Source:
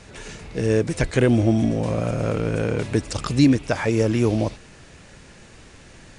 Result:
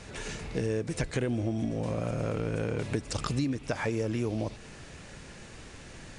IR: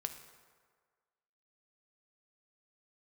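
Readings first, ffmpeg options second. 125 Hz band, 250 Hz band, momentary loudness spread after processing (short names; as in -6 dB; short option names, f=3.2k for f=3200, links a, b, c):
-9.5 dB, -11.5 dB, 16 LU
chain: -filter_complex "[0:a]acompressor=threshold=-27dB:ratio=6,asplit=2[a][b];[1:a]atrim=start_sample=2205[c];[b][c]afir=irnorm=-1:irlink=0,volume=-11dB[d];[a][d]amix=inputs=2:normalize=0,volume=-2.5dB"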